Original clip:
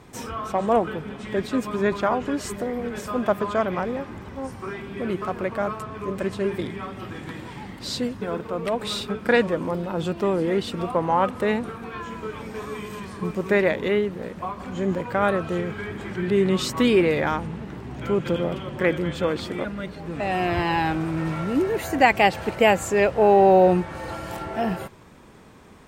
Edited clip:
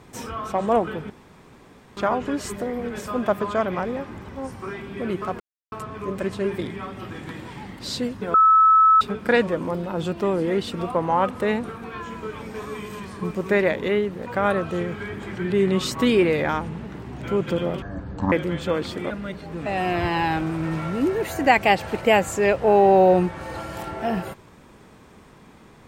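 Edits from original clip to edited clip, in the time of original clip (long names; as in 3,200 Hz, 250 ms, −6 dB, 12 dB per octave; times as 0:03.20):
0:01.10–0:01.97: fill with room tone
0:05.40–0:05.72: silence
0:08.34–0:09.01: beep over 1,300 Hz −11 dBFS
0:14.26–0:15.04: remove
0:18.60–0:18.86: play speed 52%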